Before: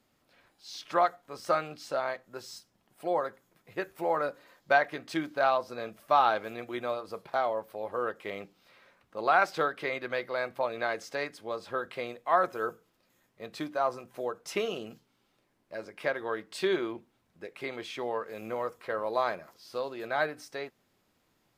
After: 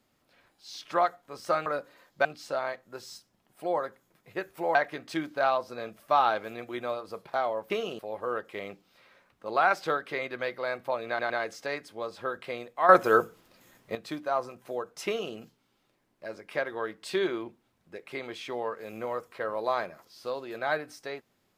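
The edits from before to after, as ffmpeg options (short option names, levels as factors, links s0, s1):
-filter_complex "[0:a]asplit=10[s0][s1][s2][s3][s4][s5][s6][s7][s8][s9];[s0]atrim=end=1.662[s10];[s1]atrim=start=4.158:end=4.752[s11];[s2]atrim=start=1.658:end=4.162[s12];[s3]atrim=start=4.748:end=7.702[s13];[s4]atrim=start=14.548:end=14.842[s14];[s5]atrim=start=7.698:end=10.902[s15];[s6]atrim=start=10.788:end=10.902[s16];[s7]atrim=start=10.788:end=12.382[s17];[s8]atrim=start=12.378:end=13.442,asetpts=PTS-STARTPTS,volume=3.55[s18];[s9]atrim=start=13.438[s19];[s10][s11]acrossfade=d=0.004:c1=hsin:c2=hsin[s20];[s20][s12]acrossfade=d=0.004:c1=hsin:c2=hsin[s21];[s21][s13]acrossfade=d=0.004:c1=hsin:c2=hsin[s22];[s22][s14]acrossfade=d=0.004:c1=hsin:c2=hsin[s23];[s23][s15]acrossfade=d=0.004:c1=hsin:c2=hsin[s24];[s24][s16]acrossfade=d=0.004:c1=hsin:c2=hsin[s25];[s25][s17]acrossfade=d=0.004:c1=hsin:c2=hsin[s26];[s26][s18]acrossfade=d=0.004:c1=hsin:c2=hsin[s27];[s27][s19]acrossfade=d=0.004:c1=hsin:c2=hsin"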